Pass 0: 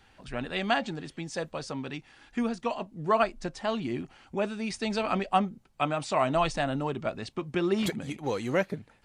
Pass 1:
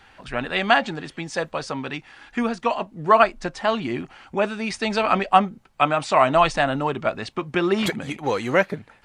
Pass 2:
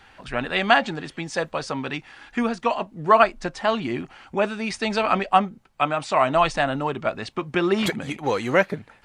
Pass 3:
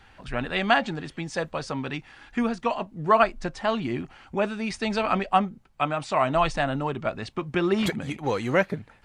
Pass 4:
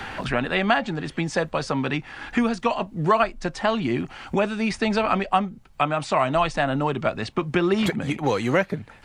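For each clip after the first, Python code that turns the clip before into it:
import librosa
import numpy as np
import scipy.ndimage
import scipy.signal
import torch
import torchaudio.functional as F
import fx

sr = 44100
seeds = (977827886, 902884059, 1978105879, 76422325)

y1 = fx.peak_eq(x, sr, hz=1400.0, db=7.5, octaves=2.8)
y1 = y1 * 10.0 ** (3.5 / 20.0)
y2 = fx.rider(y1, sr, range_db=3, speed_s=2.0)
y2 = y2 * 10.0 ** (-1.5 / 20.0)
y3 = fx.low_shelf(y2, sr, hz=170.0, db=8.5)
y3 = y3 * 10.0 ** (-4.0 / 20.0)
y4 = fx.band_squash(y3, sr, depth_pct=70)
y4 = y4 * 10.0 ** (2.5 / 20.0)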